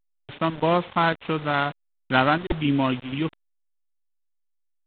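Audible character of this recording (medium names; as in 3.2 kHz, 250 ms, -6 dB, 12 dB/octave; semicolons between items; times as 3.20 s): a buzz of ramps at a fixed pitch in blocks of 8 samples; chopped level 1.6 Hz, depth 65%, duty 80%; a quantiser's noise floor 6-bit, dither none; A-law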